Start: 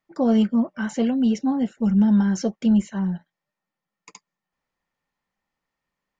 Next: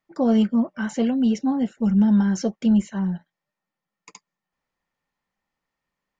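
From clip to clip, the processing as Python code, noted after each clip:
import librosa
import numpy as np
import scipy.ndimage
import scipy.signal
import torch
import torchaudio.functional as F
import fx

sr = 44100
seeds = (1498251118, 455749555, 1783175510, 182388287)

y = x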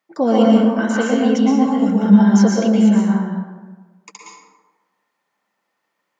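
y = scipy.signal.sosfilt(scipy.signal.butter(2, 280.0, 'highpass', fs=sr, output='sos'), x)
y = fx.rev_plate(y, sr, seeds[0], rt60_s=1.3, hf_ratio=0.45, predelay_ms=105, drr_db=-3.5)
y = y * 10.0 ** (5.5 / 20.0)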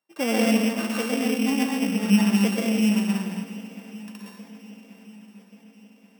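y = np.r_[np.sort(x[:len(x) // 16 * 16].reshape(-1, 16), axis=1).ravel(), x[len(x) // 16 * 16:]]
y = fx.echo_swing(y, sr, ms=1133, ratio=1.5, feedback_pct=46, wet_db=-18.5)
y = y * 10.0 ** (-8.5 / 20.0)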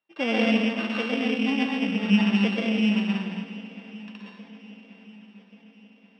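y = fx.ladder_lowpass(x, sr, hz=4100.0, resonance_pct=40)
y = y * 10.0 ** (6.5 / 20.0)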